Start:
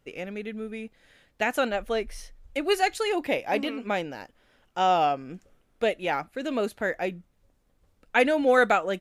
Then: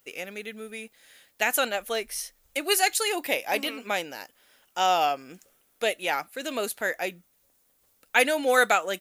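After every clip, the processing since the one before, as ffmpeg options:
ffmpeg -i in.wav -af "aemphasis=mode=production:type=riaa" out.wav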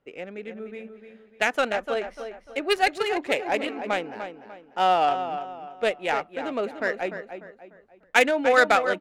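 ffmpeg -i in.wav -filter_complex "[0:a]aecho=1:1:297|594|891|1188:0.376|0.147|0.0572|0.0223,acrossover=split=580[link_01][link_02];[link_02]adynamicsmooth=sensitivity=1:basefreq=1300[link_03];[link_01][link_03]amix=inputs=2:normalize=0,volume=3dB" out.wav

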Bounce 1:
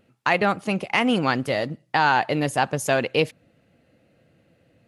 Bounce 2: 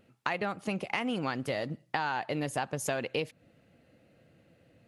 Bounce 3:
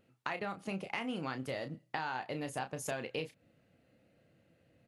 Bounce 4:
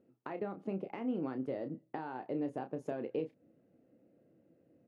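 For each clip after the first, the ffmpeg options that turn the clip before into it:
ffmpeg -i in.wav -af "acompressor=threshold=-27dB:ratio=6,volume=-2dB" out.wav
ffmpeg -i in.wav -filter_complex "[0:a]asplit=2[link_01][link_02];[link_02]adelay=31,volume=-8.5dB[link_03];[link_01][link_03]amix=inputs=2:normalize=0,volume=-6.5dB" out.wav
ffmpeg -i in.wav -af "bandpass=frequency=330:width_type=q:width=1.6:csg=0,volume=6.5dB" out.wav

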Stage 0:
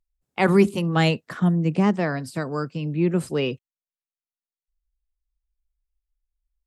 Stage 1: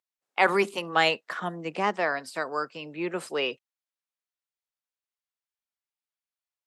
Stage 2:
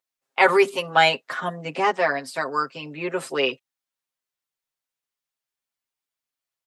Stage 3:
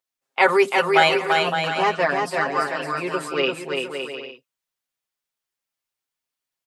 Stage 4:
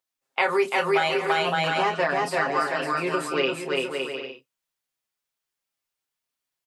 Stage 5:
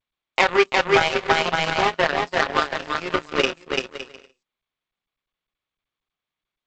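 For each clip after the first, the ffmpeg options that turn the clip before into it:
ffmpeg -i in.wav -af "highpass=650,highshelf=frequency=7100:gain=-10,volume=3dB" out.wav
ffmpeg -i in.wav -af "aecho=1:1:7.5:0.98,volume=2dB" out.wav
ffmpeg -i in.wav -af "aecho=1:1:340|561|704.6|798|858.7:0.631|0.398|0.251|0.158|0.1" out.wav
ffmpeg -i in.wav -filter_complex "[0:a]acompressor=threshold=-19dB:ratio=12,asplit=2[link_01][link_02];[link_02]adelay=30,volume=-9dB[link_03];[link_01][link_03]amix=inputs=2:normalize=0" out.wav
ffmpeg -i in.wav -af "aeval=exprs='0.398*(cos(1*acos(clip(val(0)/0.398,-1,1)))-cos(1*PI/2))+0.0562*(cos(7*acos(clip(val(0)/0.398,-1,1)))-cos(7*PI/2))':channel_layout=same,volume=6.5dB" -ar 16000 -c:a g722 out.g722

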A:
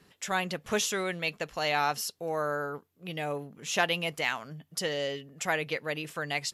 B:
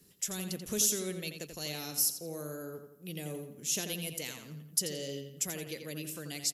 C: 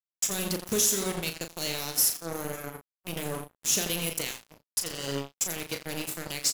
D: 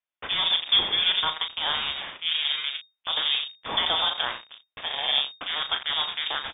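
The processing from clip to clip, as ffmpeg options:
ffmpeg -i in.wav -filter_complex "[0:a]acrossover=split=420|3000[link_01][link_02][link_03];[link_02]acompressor=threshold=-38dB:ratio=2.5[link_04];[link_01][link_04][link_03]amix=inputs=3:normalize=0,firequalizer=gain_entry='entry(360,0);entry(790,-13);entry(5800,6);entry(12000,14)':delay=0.05:min_phase=1,asplit=2[link_05][link_06];[link_06]adelay=86,lowpass=frequency=4800:poles=1,volume=-7dB,asplit=2[link_07][link_08];[link_08]adelay=86,lowpass=frequency=4800:poles=1,volume=0.46,asplit=2[link_09][link_10];[link_10]adelay=86,lowpass=frequency=4800:poles=1,volume=0.46,asplit=2[link_11][link_12];[link_12]adelay=86,lowpass=frequency=4800:poles=1,volume=0.46,asplit=2[link_13][link_14];[link_14]adelay=86,lowpass=frequency=4800:poles=1,volume=0.46[link_15];[link_05][link_07][link_09][link_11][link_13][link_15]amix=inputs=6:normalize=0,volume=-2.5dB" out.wav
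ffmpeg -i in.wav -filter_complex "[0:a]alimiter=limit=-19dB:level=0:latency=1:release=376,acrusher=bits=5:mix=0:aa=0.5,asplit=2[link_01][link_02];[link_02]adelay=36,volume=-8dB[link_03];[link_01][link_03]amix=inputs=2:normalize=0,volume=6.5dB" out.wav
ffmpeg -i in.wav -af "lowpass=frequency=3100:width_type=q:width=0.5098,lowpass=frequency=3100:width_type=q:width=0.6013,lowpass=frequency=3100:width_type=q:width=0.9,lowpass=frequency=3100:width_type=q:width=2.563,afreqshift=-3700,volume=8.5dB" out.wav

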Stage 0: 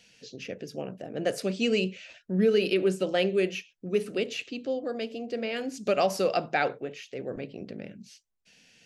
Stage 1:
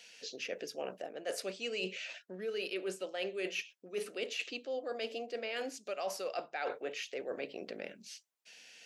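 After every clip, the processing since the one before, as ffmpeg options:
ffmpeg -i in.wav -af "highpass=510,areverse,acompressor=threshold=-38dB:ratio=12,areverse,volume=3.5dB" out.wav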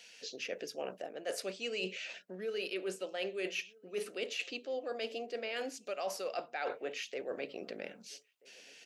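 ffmpeg -i in.wav -filter_complex "[0:a]asplit=2[link_01][link_02];[link_02]adelay=1283,volume=-25dB,highshelf=frequency=4000:gain=-28.9[link_03];[link_01][link_03]amix=inputs=2:normalize=0" out.wav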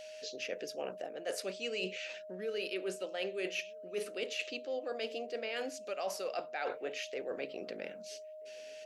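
ffmpeg -i in.wav -af "aeval=exprs='val(0)+0.00501*sin(2*PI*620*n/s)':channel_layout=same" out.wav

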